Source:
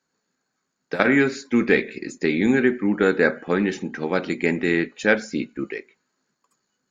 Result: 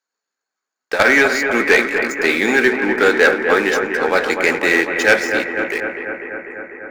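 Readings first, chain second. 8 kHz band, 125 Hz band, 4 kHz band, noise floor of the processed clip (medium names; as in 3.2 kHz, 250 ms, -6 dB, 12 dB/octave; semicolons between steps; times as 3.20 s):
no reading, -6.5 dB, +11.0 dB, -84 dBFS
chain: high-pass 560 Hz 12 dB/octave; waveshaping leveller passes 3; bucket-brigade echo 248 ms, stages 4096, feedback 76%, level -7 dB; plate-style reverb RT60 4.6 s, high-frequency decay 0.45×, DRR 20 dB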